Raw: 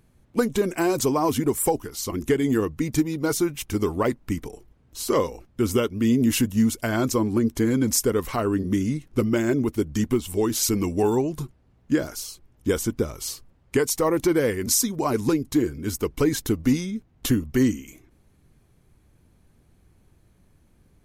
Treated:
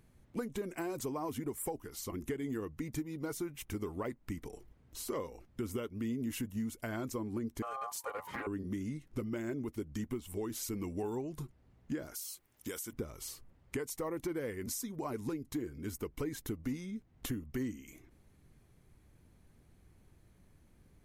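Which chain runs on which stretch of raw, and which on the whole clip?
0:07.62–0:08.47: ring modulation 940 Hz + notch comb filter 670 Hz + highs frequency-modulated by the lows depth 0.17 ms
0:12.14–0:12.93: spectral tilt +3.5 dB per octave + downward compressor 3 to 1, threshold −27 dBFS
whole clip: parametric band 2,000 Hz +3 dB 0.27 octaves; downward compressor 2.5 to 1, threshold −36 dBFS; dynamic equaliser 5,000 Hz, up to −5 dB, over −54 dBFS, Q 0.91; level −4.5 dB

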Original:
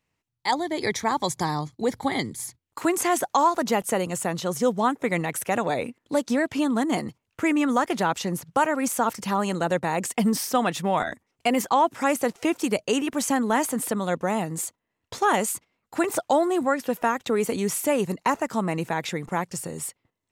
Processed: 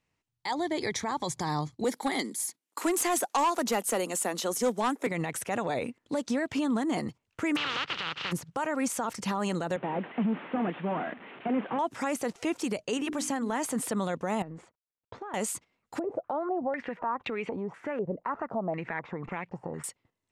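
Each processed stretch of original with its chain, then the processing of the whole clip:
0:01.84–0:05.07: Butterworth high-pass 210 Hz + parametric band 13,000 Hz +13.5 dB 1.1 octaves + gain into a clipping stage and back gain 17 dB
0:07.55–0:08.31: compressing power law on the bin magnitudes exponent 0.17 + loudspeaker in its box 120–3,800 Hz, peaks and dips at 150 Hz +5 dB, 230 Hz −9 dB, 380 Hz −4 dB, 660 Hz −8 dB, 1,300 Hz +6 dB, 2,900 Hz +7 dB
0:09.76–0:11.79: linear delta modulator 16 kbit/s, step −38.5 dBFS + high-pass filter 180 Hz 24 dB per octave
0:12.97–0:13.53: mains-hum notches 50/100/150/200/250/300/350/400/450 Hz + downward compressor 3 to 1, threshold −26 dBFS
0:14.42–0:15.34: mu-law and A-law mismatch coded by A + low-pass filter 1,600 Hz + downward compressor 10 to 1, threshold −35 dBFS
0:15.99–0:19.84: downward compressor 4 to 1, threshold −31 dBFS + low-pass on a step sequencer 4 Hz 560–2,500 Hz
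whole clip: brickwall limiter −19.5 dBFS; low-pass filter 9,400 Hz 12 dB per octave; level −1.5 dB

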